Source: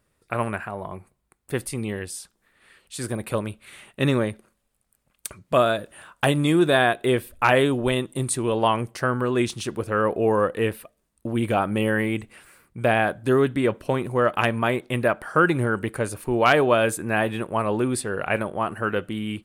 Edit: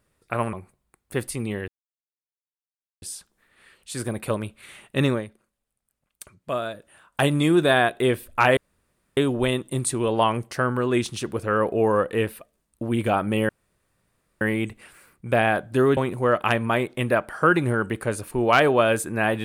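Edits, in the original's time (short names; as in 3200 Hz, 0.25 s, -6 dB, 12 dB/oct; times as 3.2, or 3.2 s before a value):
0.53–0.91 cut
2.06 insert silence 1.34 s
4.12–6.28 dip -8.5 dB, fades 0.16 s
7.61 insert room tone 0.60 s
11.93 insert room tone 0.92 s
13.49–13.9 cut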